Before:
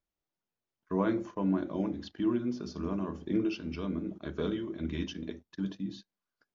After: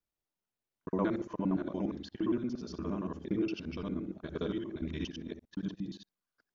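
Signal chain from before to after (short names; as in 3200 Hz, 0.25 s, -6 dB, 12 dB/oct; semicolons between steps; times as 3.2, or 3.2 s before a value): local time reversal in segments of 58 ms; gain -2 dB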